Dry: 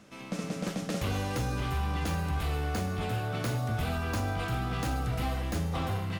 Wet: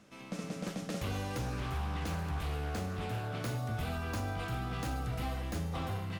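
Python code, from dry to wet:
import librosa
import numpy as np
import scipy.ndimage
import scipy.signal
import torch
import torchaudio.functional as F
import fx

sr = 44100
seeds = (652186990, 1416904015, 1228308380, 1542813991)

y = fx.doppler_dist(x, sr, depth_ms=0.22, at=(1.38, 3.42))
y = y * librosa.db_to_amplitude(-5.0)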